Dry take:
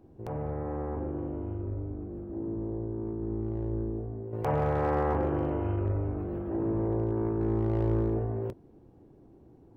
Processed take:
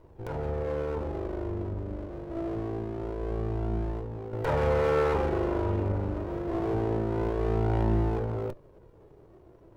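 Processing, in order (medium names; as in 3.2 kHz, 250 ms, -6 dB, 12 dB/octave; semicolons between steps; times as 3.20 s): comb filter that takes the minimum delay 2.1 ms; flange 0.25 Hz, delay 1 ms, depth 2.5 ms, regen +70%; trim +7.5 dB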